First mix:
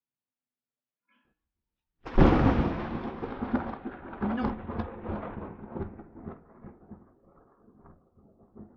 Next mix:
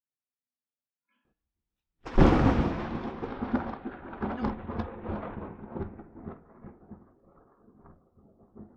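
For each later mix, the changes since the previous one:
speech -7.0 dB; master: remove LPF 4600 Hz 12 dB/oct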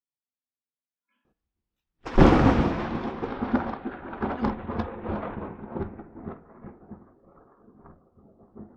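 background +5.0 dB; master: add low shelf 150 Hz -3.5 dB

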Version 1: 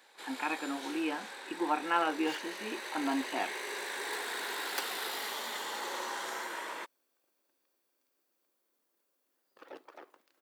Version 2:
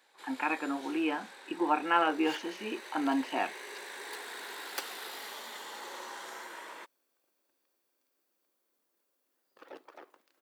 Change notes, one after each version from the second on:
speech +3.0 dB; first sound -5.5 dB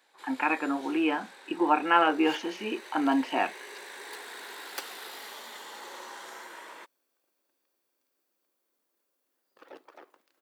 speech +4.5 dB

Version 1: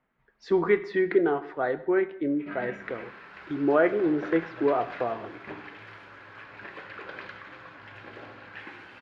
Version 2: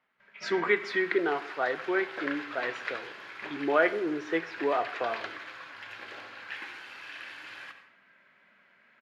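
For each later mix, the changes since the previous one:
background: entry -2.05 s; master: add tilt +4 dB/oct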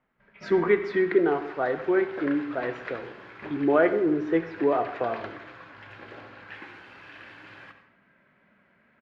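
speech: send +6.0 dB; master: add tilt -4 dB/oct

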